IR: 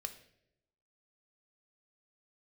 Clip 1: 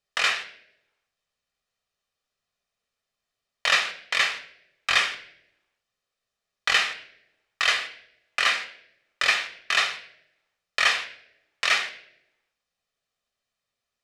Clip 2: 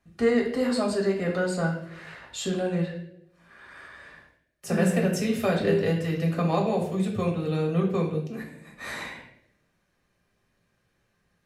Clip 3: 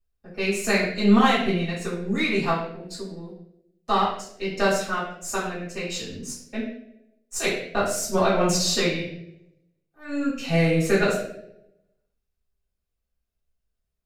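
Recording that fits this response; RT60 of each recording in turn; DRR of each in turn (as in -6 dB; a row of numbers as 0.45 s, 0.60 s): 1; no single decay rate, 0.80 s, 0.80 s; 7.0 dB, -1.0 dB, -10.5 dB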